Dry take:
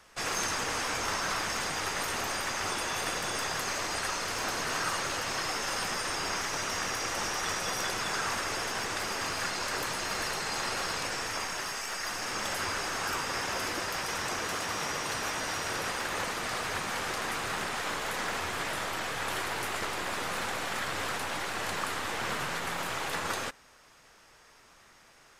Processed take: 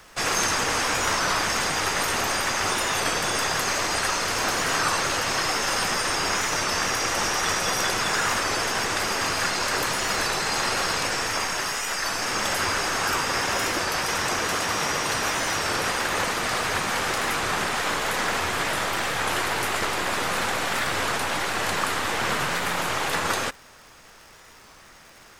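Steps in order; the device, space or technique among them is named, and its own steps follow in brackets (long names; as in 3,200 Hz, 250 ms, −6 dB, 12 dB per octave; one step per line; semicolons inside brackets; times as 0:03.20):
warped LP (wow of a warped record 33 1/3 rpm, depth 100 cents; surface crackle 68 per second −47 dBFS; pink noise bed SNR 34 dB)
level +8 dB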